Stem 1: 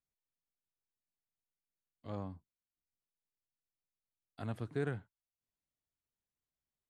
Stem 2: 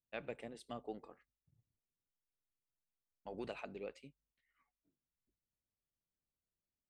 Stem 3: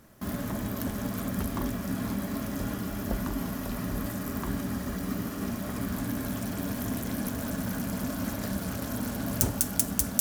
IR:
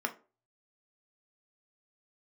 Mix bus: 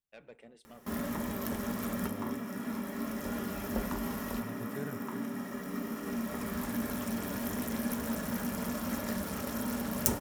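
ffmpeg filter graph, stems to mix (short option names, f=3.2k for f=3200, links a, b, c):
-filter_complex "[0:a]volume=-5dB,asplit=2[a][b];[1:a]asoftclip=type=tanh:threshold=-37.5dB,volume=-6.5dB,asplit=2[c][d];[d]volume=-14dB[e];[2:a]bandreject=f=1.5k:w=14,acompressor=mode=upward:threshold=-53dB:ratio=2.5,adelay=650,volume=-6dB,asplit=2[f][g];[g]volume=-3.5dB[h];[b]apad=whole_len=478593[i];[f][i]sidechaincompress=threshold=-56dB:ratio=8:attack=16:release=1150[j];[3:a]atrim=start_sample=2205[k];[e][h]amix=inputs=2:normalize=0[l];[l][k]afir=irnorm=-1:irlink=0[m];[a][c][j][m]amix=inputs=4:normalize=0"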